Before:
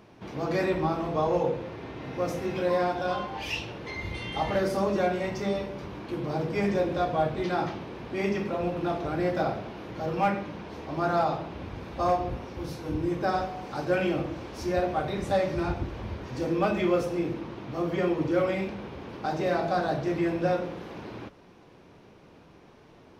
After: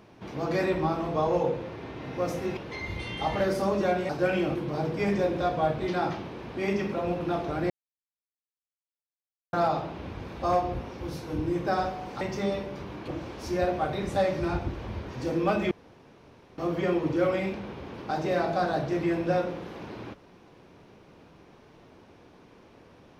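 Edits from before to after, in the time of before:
2.57–3.72 s: delete
5.24–6.11 s: swap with 13.77–14.23 s
9.26–11.09 s: mute
16.86–17.73 s: room tone

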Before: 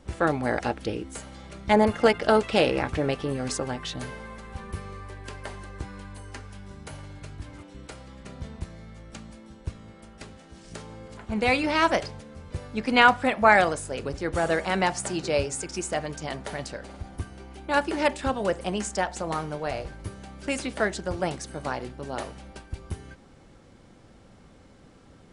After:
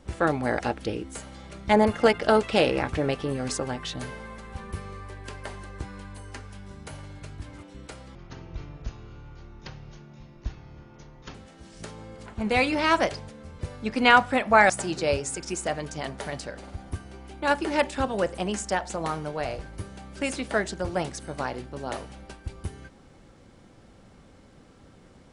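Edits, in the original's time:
8.15–10.26 s: speed 66%
13.61–14.96 s: delete

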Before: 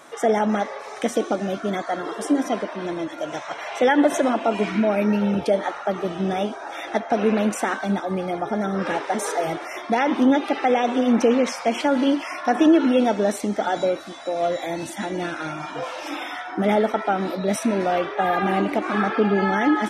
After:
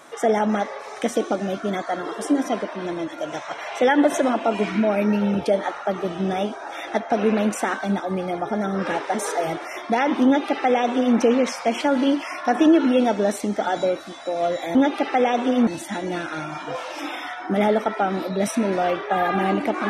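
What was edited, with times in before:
10.25–11.17 s: copy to 14.75 s

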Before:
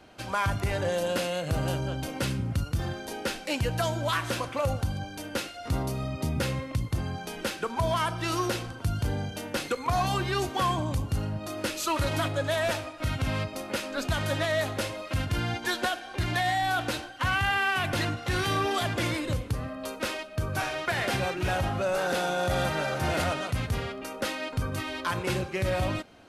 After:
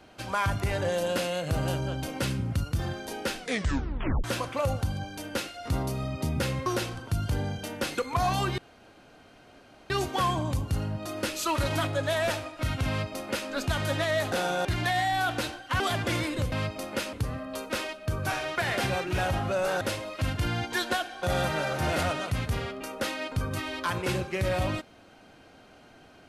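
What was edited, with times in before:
3.38 s: tape stop 0.86 s
6.66–8.39 s: delete
10.31 s: insert room tone 1.32 s
13.29–13.90 s: copy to 19.43 s
14.73–16.15 s: swap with 22.11–22.44 s
17.30–18.71 s: delete

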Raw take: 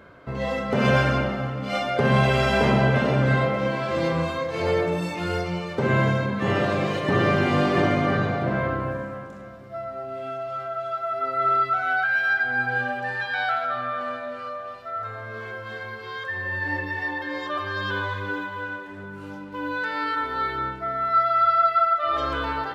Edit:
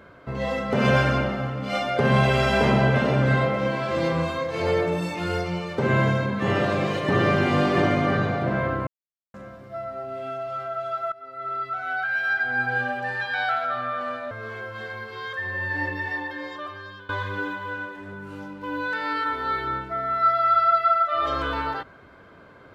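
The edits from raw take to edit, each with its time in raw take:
8.87–9.34 s: mute
11.12–12.64 s: fade in, from -19 dB
14.31–15.22 s: delete
16.93–18.00 s: fade out, to -22 dB

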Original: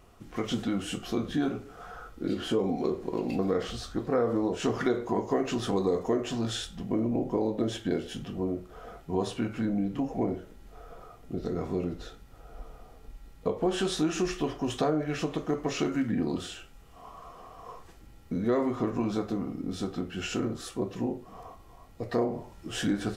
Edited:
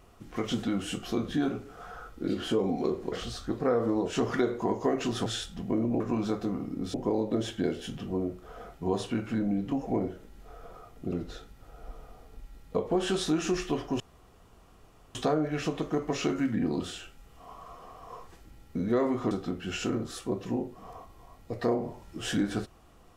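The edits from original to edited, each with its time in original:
3.12–3.59 s: delete
5.73–6.47 s: delete
11.39–11.83 s: delete
14.71 s: insert room tone 1.15 s
18.87–19.81 s: move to 7.21 s

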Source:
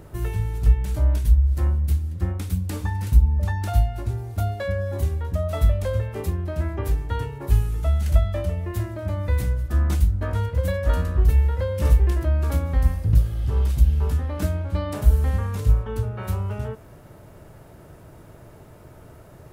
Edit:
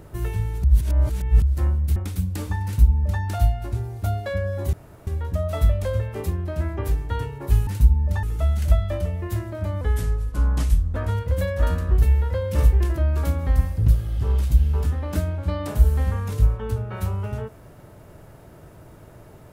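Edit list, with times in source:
0.64–1.42 s: reverse
1.96–2.30 s: delete
2.99–3.55 s: copy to 7.67 s
5.07 s: insert room tone 0.34 s
9.25–10.23 s: speed 85%

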